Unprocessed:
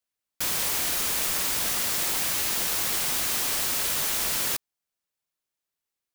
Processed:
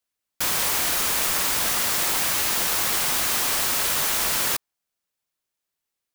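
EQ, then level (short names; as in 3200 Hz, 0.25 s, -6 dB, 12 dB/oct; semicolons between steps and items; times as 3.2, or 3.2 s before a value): dynamic EQ 1100 Hz, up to +4 dB, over -50 dBFS, Q 0.75; +3.0 dB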